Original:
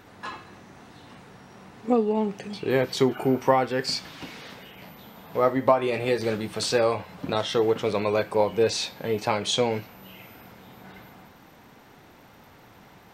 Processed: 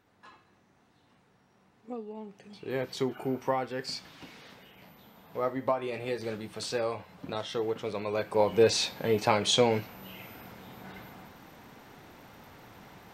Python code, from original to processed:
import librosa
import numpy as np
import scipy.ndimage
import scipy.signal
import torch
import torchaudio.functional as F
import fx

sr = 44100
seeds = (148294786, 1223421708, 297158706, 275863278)

y = fx.gain(x, sr, db=fx.line((2.27, -17.5), (2.82, -9.0), (8.05, -9.0), (8.57, 0.0)))